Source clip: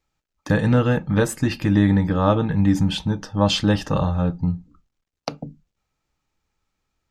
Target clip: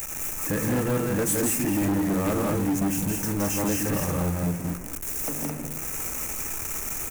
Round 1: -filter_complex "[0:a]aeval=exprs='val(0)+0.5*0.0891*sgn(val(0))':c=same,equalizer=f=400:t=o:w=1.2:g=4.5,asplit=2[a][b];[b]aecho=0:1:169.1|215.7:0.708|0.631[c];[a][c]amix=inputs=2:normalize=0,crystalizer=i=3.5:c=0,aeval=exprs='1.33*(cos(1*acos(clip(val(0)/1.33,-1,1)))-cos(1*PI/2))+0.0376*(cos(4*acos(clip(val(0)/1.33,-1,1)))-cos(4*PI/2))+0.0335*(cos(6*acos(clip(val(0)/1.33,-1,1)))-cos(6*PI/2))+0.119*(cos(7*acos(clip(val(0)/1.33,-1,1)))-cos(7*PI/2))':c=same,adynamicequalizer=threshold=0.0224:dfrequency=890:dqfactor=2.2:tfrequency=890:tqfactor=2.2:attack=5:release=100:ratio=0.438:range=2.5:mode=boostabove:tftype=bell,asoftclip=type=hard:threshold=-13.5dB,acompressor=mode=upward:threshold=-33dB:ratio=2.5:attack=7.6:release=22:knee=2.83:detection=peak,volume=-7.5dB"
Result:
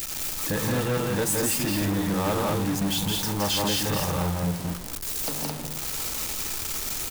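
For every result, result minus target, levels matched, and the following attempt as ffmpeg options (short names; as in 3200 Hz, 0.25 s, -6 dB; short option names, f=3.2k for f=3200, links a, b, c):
4000 Hz band +11.5 dB; 1000 Hz band +2.5 dB
-filter_complex "[0:a]aeval=exprs='val(0)+0.5*0.0891*sgn(val(0))':c=same,asuperstop=centerf=3900:order=8:qfactor=1.3,equalizer=f=400:t=o:w=1.2:g=4.5,asplit=2[a][b];[b]aecho=0:1:169.1|215.7:0.708|0.631[c];[a][c]amix=inputs=2:normalize=0,crystalizer=i=3.5:c=0,aeval=exprs='1.33*(cos(1*acos(clip(val(0)/1.33,-1,1)))-cos(1*PI/2))+0.0376*(cos(4*acos(clip(val(0)/1.33,-1,1)))-cos(4*PI/2))+0.0335*(cos(6*acos(clip(val(0)/1.33,-1,1)))-cos(6*PI/2))+0.119*(cos(7*acos(clip(val(0)/1.33,-1,1)))-cos(7*PI/2))':c=same,adynamicequalizer=threshold=0.0224:dfrequency=890:dqfactor=2.2:tfrequency=890:tqfactor=2.2:attack=5:release=100:ratio=0.438:range=2.5:mode=boostabove:tftype=bell,asoftclip=type=hard:threshold=-13.5dB,acompressor=mode=upward:threshold=-33dB:ratio=2.5:attack=7.6:release=22:knee=2.83:detection=peak,volume=-7.5dB"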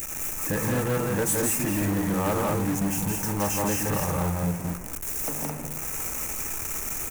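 1000 Hz band +3.0 dB
-filter_complex "[0:a]aeval=exprs='val(0)+0.5*0.0891*sgn(val(0))':c=same,asuperstop=centerf=3900:order=8:qfactor=1.3,equalizer=f=400:t=o:w=1.2:g=4.5,asplit=2[a][b];[b]aecho=0:1:169.1|215.7:0.708|0.631[c];[a][c]amix=inputs=2:normalize=0,crystalizer=i=3.5:c=0,aeval=exprs='1.33*(cos(1*acos(clip(val(0)/1.33,-1,1)))-cos(1*PI/2))+0.0376*(cos(4*acos(clip(val(0)/1.33,-1,1)))-cos(4*PI/2))+0.0335*(cos(6*acos(clip(val(0)/1.33,-1,1)))-cos(6*PI/2))+0.119*(cos(7*acos(clip(val(0)/1.33,-1,1)))-cos(7*PI/2))':c=same,adynamicequalizer=threshold=0.0224:dfrequency=280:dqfactor=2.2:tfrequency=280:tqfactor=2.2:attack=5:release=100:ratio=0.438:range=2.5:mode=boostabove:tftype=bell,asoftclip=type=hard:threshold=-13.5dB,acompressor=mode=upward:threshold=-33dB:ratio=2.5:attack=7.6:release=22:knee=2.83:detection=peak,volume=-7.5dB"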